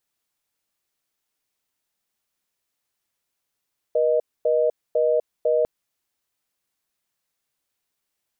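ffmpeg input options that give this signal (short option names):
-f lavfi -i "aevalsrc='0.106*(sin(2*PI*480*t)+sin(2*PI*620*t))*clip(min(mod(t,0.5),0.25-mod(t,0.5))/0.005,0,1)':d=1.7:s=44100"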